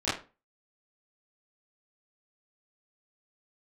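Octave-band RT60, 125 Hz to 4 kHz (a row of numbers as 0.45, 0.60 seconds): 0.35, 0.35, 0.35, 0.30, 0.30, 0.25 seconds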